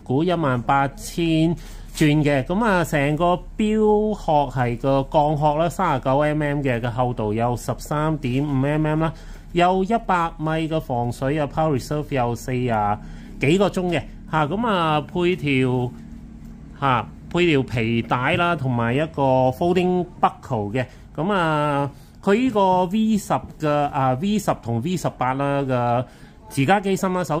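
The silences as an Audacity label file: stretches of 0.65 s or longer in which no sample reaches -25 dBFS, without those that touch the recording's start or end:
15.890000	16.820000	silence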